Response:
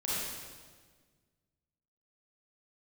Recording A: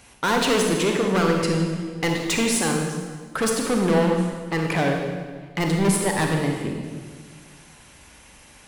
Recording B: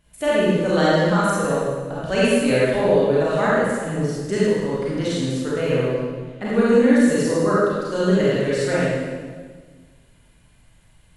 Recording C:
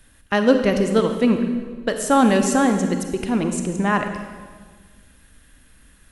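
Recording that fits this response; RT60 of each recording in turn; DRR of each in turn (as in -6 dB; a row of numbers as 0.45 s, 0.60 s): B; 1.6 s, 1.6 s, 1.6 s; 1.5 dB, -8.5 dB, 6.0 dB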